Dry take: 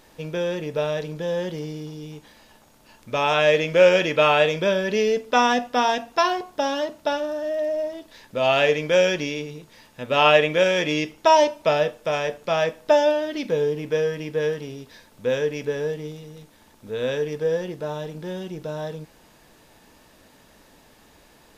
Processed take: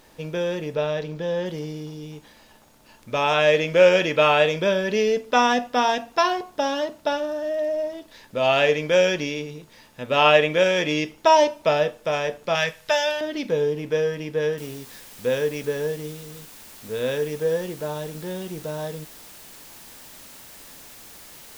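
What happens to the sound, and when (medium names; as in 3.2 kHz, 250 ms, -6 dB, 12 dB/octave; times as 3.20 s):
0.75–1.46 s: low-pass 5.6 kHz
12.55–13.21 s: FFT filter 170 Hz 0 dB, 260 Hz -18 dB, 410 Hz -7 dB, 640 Hz -6 dB, 1.2 kHz -1 dB, 1.8 kHz +6 dB
14.58 s: noise floor step -70 dB -45 dB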